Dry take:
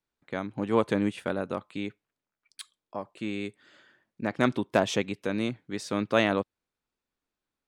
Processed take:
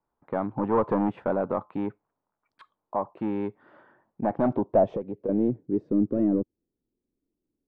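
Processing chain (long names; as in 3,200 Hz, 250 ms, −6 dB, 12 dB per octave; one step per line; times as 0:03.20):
soft clipping −25.5 dBFS, distortion −7 dB
low-pass filter sweep 950 Hz → 330 Hz, 0:04.08–0:05.94
0:04.84–0:05.29: downward compressor 6 to 1, threshold −34 dBFS, peak gain reduction 11 dB
level +5.5 dB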